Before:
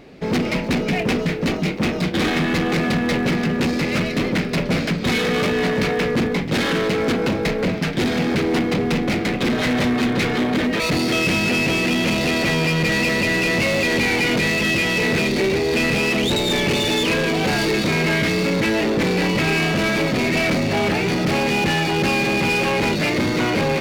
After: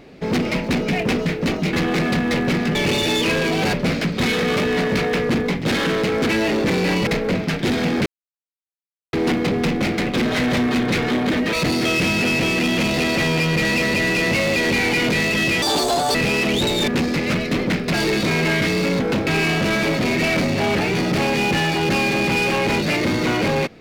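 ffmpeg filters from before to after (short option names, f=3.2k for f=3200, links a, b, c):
-filter_complex "[0:a]asplit=13[a][b][c][d][e][f][g][h][i][j][k][l][m];[a]atrim=end=1.732[n];[b]atrim=start=2.508:end=3.532[o];[c]atrim=start=16.568:end=17.552[p];[d]atrim=start=4.588:end=7.152[q];[e]atrim=start=18.618:end=19.402[r];[f]atrim=start=7.408:end=8.4,asetpts=PTS-STARTPTS,afade=t=out:st=0.988:d=0.004:c=hsin,apad=pad_dur=1.07[s];[g]atrim=start=8.4:end=14.894,asetpts=PTS-STARTPTS,afade=t=in:d=0.004:c=hsin[t];[h]atrim=start=14.89:end=15.84,asetpts=PTS-STARTPTS,asetrate=79380,aresample=44100[u];[i]atrim=start=15.836:end=16.572[v];[j]atrim=start=3.528:end=4.592[w];[k]atrim=start=17.548:end=18.622[x];[l]atrim=start=7.148:end=7.412[y];[m]atrim=start=19.398[z];[n][o]acrossfade=d=0.004:c1=hsin:c2=hsin[aa];[aa][p]acrossfade=d=0.004:c1=hsin:c2=hsin[ab];[ab][q]acrossfade=d=0.004:c1=hsin:c2=hsin[ac];[ac][r]acrossfade=d=0.004:c1=hsin:c2=hsin[ad];[s][t]concat=n=2:v=0:a=1[ae];[ad][ae]acrossfade=d=0.004:c1=hsin:c2=hsin[af];[af][u]acrossfade=d=0.004:c1=hsin:c2=hsin[ag];[ag][v]acrossfade=d=0.004:c1=hsin:c2=hsin[ah];[ah][w]acrossfade=d=0.004:c1=hsin:c2=hsin[ai];[ai][x]acrossfade=d=0.004:c1=hsin:c2=hsin[aj];[aj][y]acrossfade=d=0.004:c1=hsin:c2=hsin[ak];[ak][z]acrossfade=d=0.004:c1=hsin:c2=hsin"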